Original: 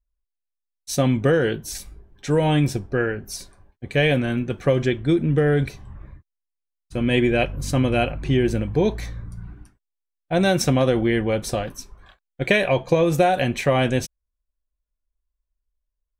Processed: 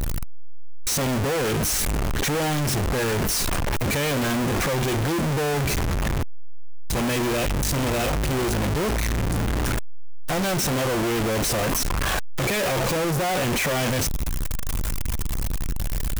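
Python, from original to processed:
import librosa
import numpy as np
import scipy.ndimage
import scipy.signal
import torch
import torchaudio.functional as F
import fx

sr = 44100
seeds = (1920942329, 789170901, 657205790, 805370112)

y = np.sign(x) * np.sqrt(np.mean(np.square(x)))
y = fx.peak_eq(y, sr, hz=4000.0, db=-2.5, octaves=0.77)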